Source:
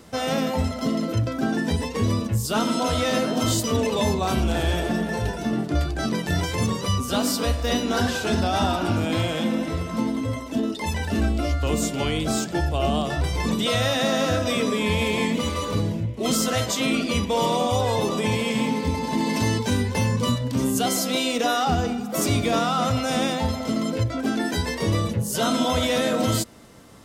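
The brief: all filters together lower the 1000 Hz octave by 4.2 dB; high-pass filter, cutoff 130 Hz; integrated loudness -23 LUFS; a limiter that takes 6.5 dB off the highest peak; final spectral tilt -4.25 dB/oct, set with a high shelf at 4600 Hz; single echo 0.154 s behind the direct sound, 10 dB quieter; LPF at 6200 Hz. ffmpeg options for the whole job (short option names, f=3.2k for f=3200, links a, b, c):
-af "highpass=130,lowpass=6.2k,equalizer=f=1k:t=o:g=-6.5,highshelf=f=4.6k:g=6,alimiter=limit=-17dB:level=0:latency=1,aecho=1:1:154:0.316,volume=3dB"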